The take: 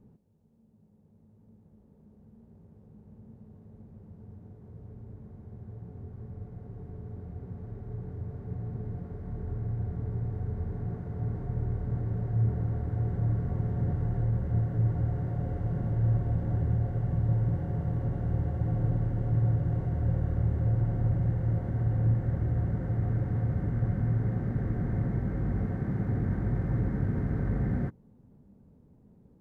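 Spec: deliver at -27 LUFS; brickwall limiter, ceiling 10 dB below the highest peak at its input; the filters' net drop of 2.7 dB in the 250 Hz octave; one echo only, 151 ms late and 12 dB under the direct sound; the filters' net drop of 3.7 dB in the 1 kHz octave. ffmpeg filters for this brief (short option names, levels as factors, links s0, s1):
-af "equalizer=f=250:t=o:g=-4.5,equalizer=f=1000:t=o:g=-5.5,alimiter=level_in=1.41:limit=0.0631:level=0:latency=1,volume=0.708,aecho=1:1:151:0.251,volume=2.51"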